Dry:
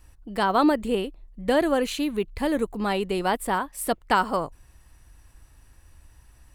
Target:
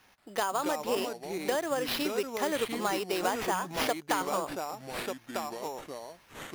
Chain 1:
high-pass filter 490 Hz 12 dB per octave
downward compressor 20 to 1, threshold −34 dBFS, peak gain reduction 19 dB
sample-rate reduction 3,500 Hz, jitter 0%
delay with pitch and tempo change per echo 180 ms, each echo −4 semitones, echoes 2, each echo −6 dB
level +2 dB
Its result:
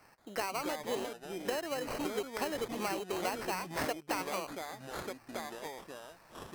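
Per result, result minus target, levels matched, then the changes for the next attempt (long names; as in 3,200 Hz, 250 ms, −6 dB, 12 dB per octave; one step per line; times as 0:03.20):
downward compressor: peak gain reduction +6 dB; sample-rate reduction: distortion +5 dB
change: downward compressor 20 to 1, threshold −27.5 dBFS, peak gain reduction 13 dB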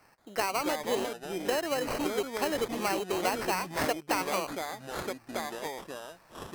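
sample-rate reduction: distortion +5 dB
change: sample-rate reduction 8,000 Hz, jitter 0%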